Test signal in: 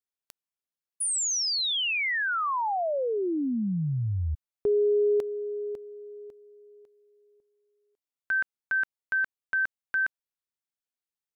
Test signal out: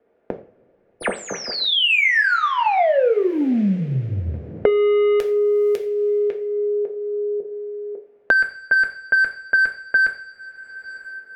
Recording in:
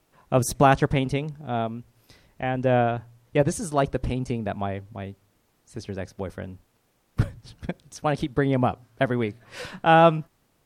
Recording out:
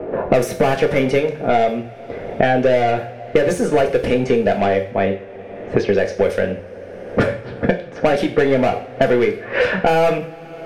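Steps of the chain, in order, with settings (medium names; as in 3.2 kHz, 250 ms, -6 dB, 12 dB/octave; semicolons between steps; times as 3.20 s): overdrive pedal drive 28 dB, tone 4.3 kHz, clips at -4.5 dBFS; graphic EQ 250/500/1000/2000/4000/8000 Hz -4/+8/-11/+3/-7/-7 dB; level-controlled noise filter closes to 540 Hz, open at -12 dBFS; two-slope reverb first 0.36 s, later 2.4 s, from -27 dB, DRR 2 dB; three bands compressed up and down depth 100%; trim -3.5 dB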